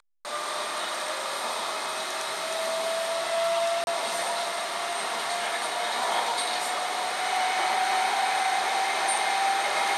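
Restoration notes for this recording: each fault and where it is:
3.84–3.87 s: dropout 31 ms

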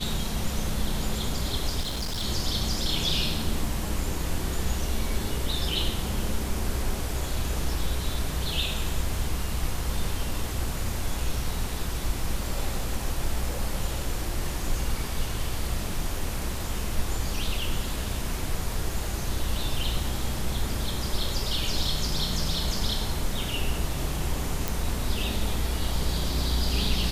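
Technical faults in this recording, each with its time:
1.80–2.24 s: clipped -26.5 dBFS
24.68 s: pop

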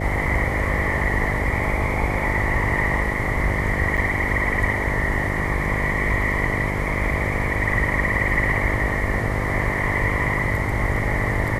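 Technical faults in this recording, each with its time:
buzz 50 Hz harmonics 13 -27 dBFS
3.97–3.98 s: dropout 6.9 ms

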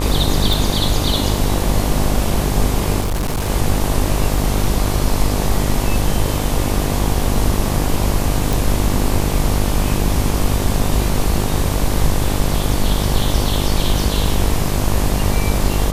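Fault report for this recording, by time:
buzz 50 Hz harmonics 24 -20 dBFS
0.53 s: pop
3.00–3.50 s: clipped -16 dBFS
4.38 s: dropout 2.5 ms
8.53 s: pop

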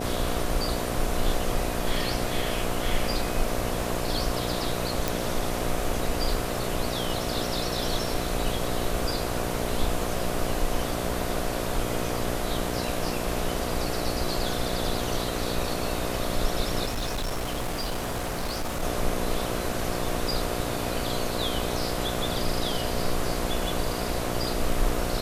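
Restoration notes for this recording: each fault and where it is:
buzz 60 Hz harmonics 12 -32 dBFS
5.08 s: pop
16.85–18.83 s: clipped -25.5 dBFS

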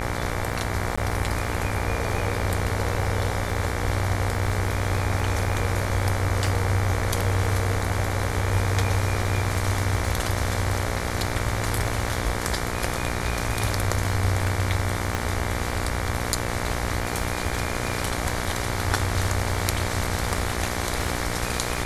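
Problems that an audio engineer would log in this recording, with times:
buzz 60 Hz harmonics 39 -30 dBFS
crackle 31 per s -33 dBFS
0.96–0.97 s: dropout 15 ms
15.15 s: pop

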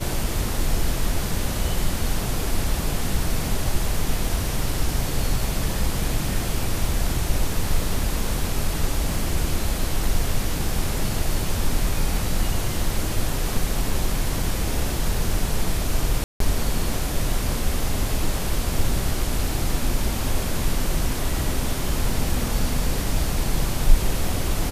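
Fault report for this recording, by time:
16.24–16.40 s: dropout 163 ms

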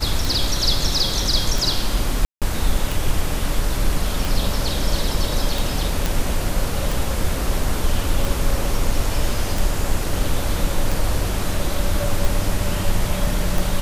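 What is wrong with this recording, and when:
tick 45 rpm
2.25–2.42 s: dropout 167 ms
6.06 s: pop

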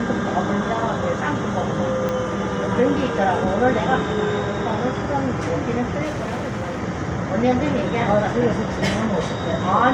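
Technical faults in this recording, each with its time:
2.09 s: pop -12 dBFS
6.04–6.80 s: clipped -22 dBFS

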